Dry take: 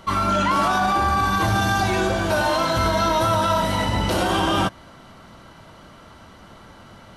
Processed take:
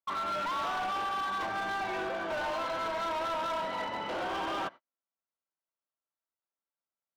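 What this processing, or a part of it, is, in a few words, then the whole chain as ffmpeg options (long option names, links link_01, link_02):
walkie-talkie: -af "highpass=410,lowpass=2500,asoftclip=type=hard:threshold=-22dB,agate=range=-46dB:threshold=-36dB:ratio=16:detection=peak,volume=-8.5dB"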